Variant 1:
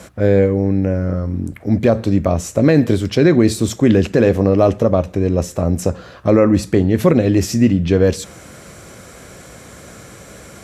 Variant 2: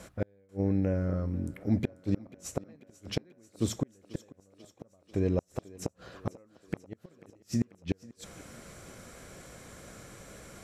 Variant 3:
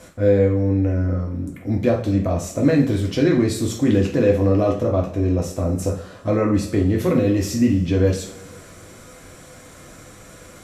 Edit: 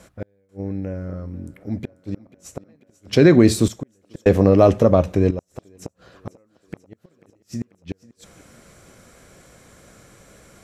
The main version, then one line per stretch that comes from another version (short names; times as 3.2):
2
3.13–3.68 from 1
4.26–5.31 from 1
not used: 3